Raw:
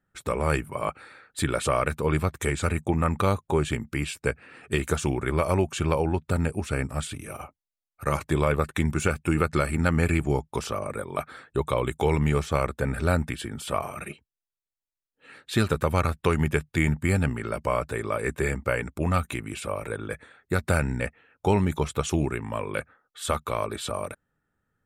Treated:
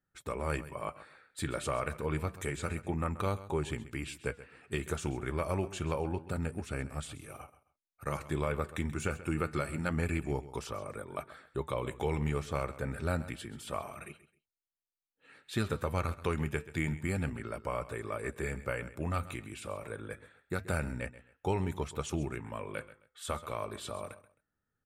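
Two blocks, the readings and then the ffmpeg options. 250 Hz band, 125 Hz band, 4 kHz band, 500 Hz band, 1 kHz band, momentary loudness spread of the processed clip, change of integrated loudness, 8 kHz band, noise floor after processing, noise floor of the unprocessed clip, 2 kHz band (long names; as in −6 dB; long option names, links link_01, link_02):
−9.5 dB, −9.5 dB, −9.5 dB, −9.5 dB, −9.5 dB, 10 LU, −9.5 dB, −9.5 dB, below −85 dBFS, below −85 dBFS, −9.5 dB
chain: -af "flanger=delay=2.3:depth=7.2:regen=-82:speed=0.28:shape=sinusoidal,aecho=1:1:132|264:0.158|0.038,volume=-5dB"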